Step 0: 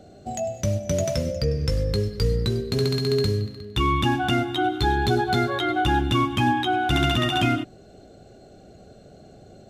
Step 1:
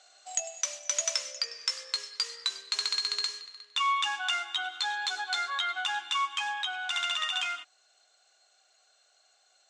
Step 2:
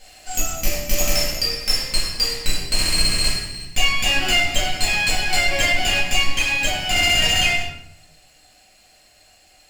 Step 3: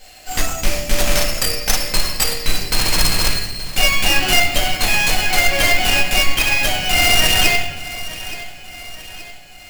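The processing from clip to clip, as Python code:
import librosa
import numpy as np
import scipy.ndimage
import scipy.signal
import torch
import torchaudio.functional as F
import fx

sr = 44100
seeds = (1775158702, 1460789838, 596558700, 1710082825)

y1 = scipy.signal.sosfilt(scipy.signal.cheby1(3, 1.0, [1000.0, 7500.0], 'bandpass', fs=sr, output='sos'), x)
y1 = fx.high_shelf(y1, sr, hz=4900.0, db=10.0)
y1 = fx.rider(y1, sr, range_db=4, speed_s=2.0)
y1 = y1 * librosa.db_to_amplitude(-3.0)
y2 = fx.lower_of_two(y1, sr, delay_ms=0.41)
y2 = 10.0 ** (-25.5 / 20.0) * np.tanh(y2 / 10.0 ** (-25.5 / 20.0))
y2 = fx.room_shoebox(y2, sr, seeds[0], volume_m3=170.0, walls='mixed', distance_m=2.1)
y2 = y2 * librosa.db_to_amplitude(8.0)
y3 = fx.tracing_dist(y2, sr, depth_ms=0.2)
y3 = fx.echo_feedback(y3, sr, ms=874, feedback_pct=51, wet_db=-15.5)
y3 = np.repeat(y3[::2], 2)[:len(y3)]
y3 = y3 * librosa.db_to_amplitude(3.5)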